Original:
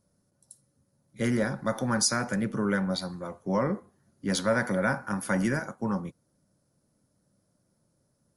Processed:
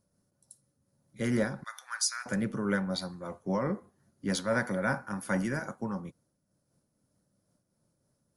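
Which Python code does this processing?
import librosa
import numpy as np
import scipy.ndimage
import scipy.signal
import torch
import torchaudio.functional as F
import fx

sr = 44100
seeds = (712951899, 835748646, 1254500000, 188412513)

y = fx.highpass(x, sr, hz=1300.0, slope=24, at=(1.64, 2.26))
y = fx.am_noise(y, sr, seeds[0], hz=5.7, depth_pct=65)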